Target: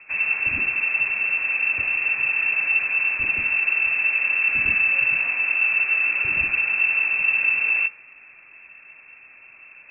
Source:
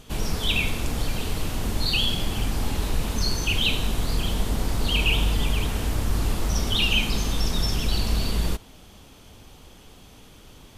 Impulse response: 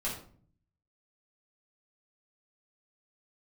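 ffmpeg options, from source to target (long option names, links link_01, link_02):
-af "asetrate=48000,aresample=44100,bandreject=frequency=131.6:width_type=h:width=4,bandreject=frequency=263.2:width_type=h:width=4,bandreject=frequency=394.8:width_type=h:width=4,bandreject=frequency=526.4:width_type=h:width=4,bandreject=frequency=658:width_type=h:width=4,bandreject=frequency=789.6:width_type=h:width=4,bandreject=frequency=921.2:width_type=h:width=4,bandreject=frequency=1052.8:width_type=h:width=4,bandreject=frequency=1184.4:width_type=h:width=4,bandreject=frequency=1316:width_type=h:width=4,bandreject=frequency=1447.6:width_type=h:width=4,bandreject=frequency=1579.2:width_type=h:width=4,bandreject=frequency=1710.8:width_type=h:width=4,bandreject=frequency=1842.4:width_type=h:width=4,bandreject=frequency=1974:width_type=h:width=4,bandreject=frequency=2105.6:width_type=h:width=4,bandreject=frequency=2237.2:width_type=h:width=4,bandreject=frequency=2368.8:width_type=h:width=4,bandreject=frequency=2500.4:width_type=h:width=4,bandreject=frequency=2632:width_type=h:width=4,bandreject=frequency=2763.6:width_type=h:width=4,bandreject=frequency=2895.2:width_type=h:width=4,bandreject=frequency=3026.8:width_type=h:width=4,bandreject=frequency=3158.4:width_type=h:width=4,bandreject=frequency=3290:width_type=h:width=4,bandreject=frequency=3421.6:width_type=h:width=4,bandreject=frequency=3553.2:width_type=h:width=4,bandreject=frequency=3684.8:width_type=h:width=4,bandreject=frequency=3816.4:width_type=h:width=4,lowpass=frequency=2300:width_type=q:width=0.5098,lowpass=frequency=2300:width_type=q:width=0.6013,lowpass=frequency=2300:width_type=q:width=0.9,lowpass=frequency=2300:width_type=q:width=2.563,afreqshift=-2700,volume=1.5dB"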